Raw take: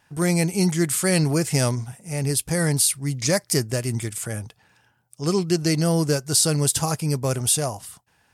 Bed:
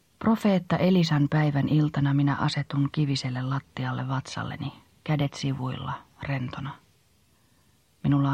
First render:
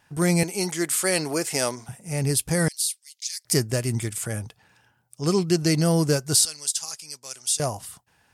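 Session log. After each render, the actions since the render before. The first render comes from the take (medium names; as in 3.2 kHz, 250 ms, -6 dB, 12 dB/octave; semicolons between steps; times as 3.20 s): 0.43–1.89 s: high-pass 350 Hz; 2.68–3.45 s: ladder high-pass 2.9 kHz, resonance 30%; 6.45–7.60 s: band-pass filter 5.8 kHz, Q 1.2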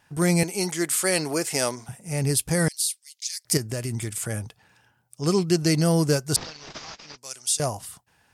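3.57–4.11 s: compression 4:1, threshold -25 dBFS; 6.36–7.18 s: CVSD coder 32 kbps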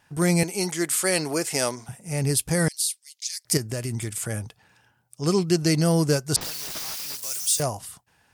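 6.41–7.63 s: zero-crossing glitches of -26 dBFS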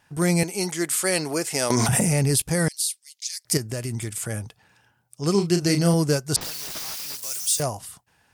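1.70–2.42 s: level flattener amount 100%; 5.31–5.94 s: doubling 35 ms -7 dB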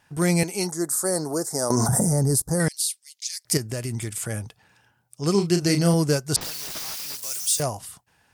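0.67–2.60 s: Butterworth band-stop 2.7 kHz, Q 0.64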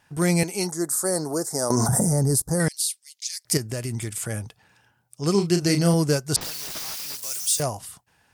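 no audible change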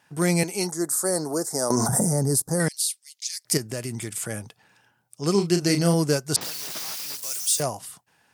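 high-pass 140 Hz 12 dB/octave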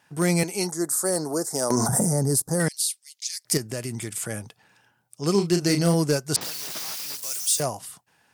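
hard clipper -12.5 dBFS, distortion -25 dB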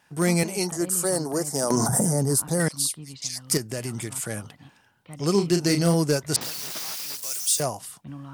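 add bed -16.5 dB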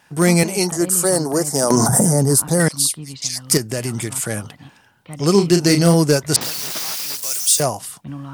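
trim +7.5 dB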